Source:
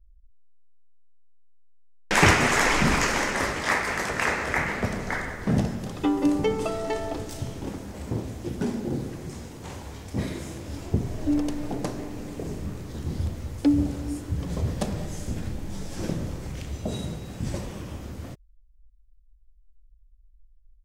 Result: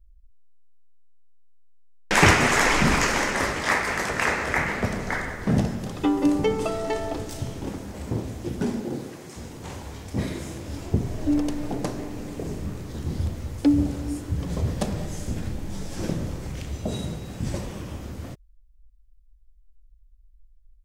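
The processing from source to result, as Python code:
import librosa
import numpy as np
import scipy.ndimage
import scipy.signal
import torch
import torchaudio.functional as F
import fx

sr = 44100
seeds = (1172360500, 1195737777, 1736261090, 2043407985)

y = fx.highpass(x, sr, hz=fx.line((8.81, 210.0), (9.36, 540.0)), slope=6, at=(8.81, 9.36), fade=0.02)
y = y * 10.0 ** (1.5 / 20.0)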